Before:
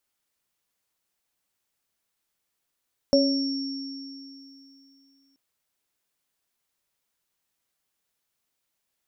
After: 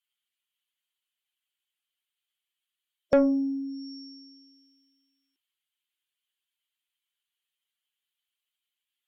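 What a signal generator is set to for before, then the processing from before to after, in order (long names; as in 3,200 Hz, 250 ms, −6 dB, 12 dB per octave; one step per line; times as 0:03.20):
inharmonic partials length 2.23 s, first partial 273 Hz, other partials 558/5,480 Hz, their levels 5/−5.5 dB, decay 2.90 s, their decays 0.51/3.12 s, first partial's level −19 dB
spectral dynamics exaggerated over time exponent 1.5
treble cut that deepens with the level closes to 740 Hz, closed at −30.5 dBFS
mid-hump overdrive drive 18 dB, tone 2,500 Hz, clips at −11 dBFS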